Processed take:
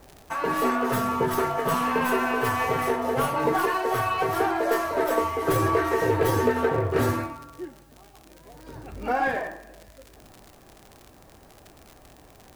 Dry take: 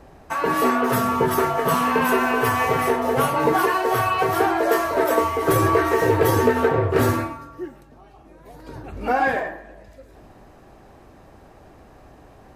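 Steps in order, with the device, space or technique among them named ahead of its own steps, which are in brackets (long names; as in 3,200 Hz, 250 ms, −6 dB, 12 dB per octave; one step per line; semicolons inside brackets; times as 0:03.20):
record under a worn stylus (stylus tracing distortion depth 0.035 ms; surface crackle −29 dBFS; white noise bed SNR 38 dB)
level −4.5 dB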